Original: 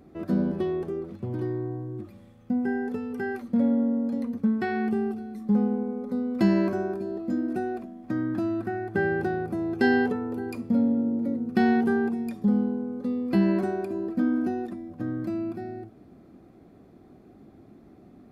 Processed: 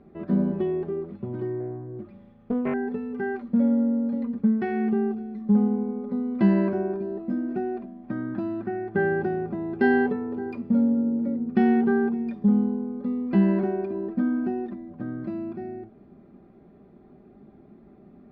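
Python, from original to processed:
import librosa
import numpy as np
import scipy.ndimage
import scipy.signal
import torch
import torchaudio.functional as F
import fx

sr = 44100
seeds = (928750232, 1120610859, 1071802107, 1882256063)

y = fx.air_absorb(x, sr, metres=330.0)
y = y + 0.47 * np.pad(y, (int(5.0 * sr / 1000.0), 0))[:len(y)]
y = fx.doppler_dist(y, sr, depth_ms=0.67, at=(1.6, 2.74))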